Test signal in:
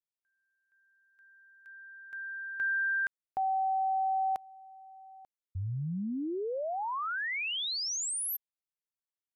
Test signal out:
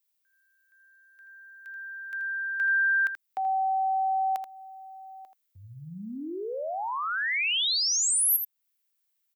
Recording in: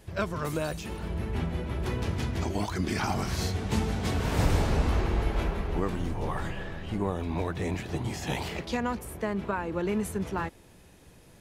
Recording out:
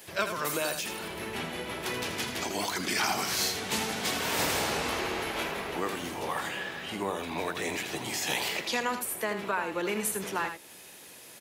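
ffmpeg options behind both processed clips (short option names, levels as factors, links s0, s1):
-filter_complex "[0:a]highpass=f=260:p=1,highshelf=f=4600:g=-12,acrossover=split=340|1900[s0][s1][s2];[s2]acontrast=80[s3];[s0][s1][s3]amix=inputs=3:normalize=0,aemphasis=mode=production:type=bsi,aecho=1:1:81:0.376,asplit=2[s4][s5];[s5]acompressor=threshold=0.0126:ratio=6:attack=0.44:release=506:knee=1:detection=peak,volume=0.794[s6];[s4][s6]amix=inputs=2:normalize=0"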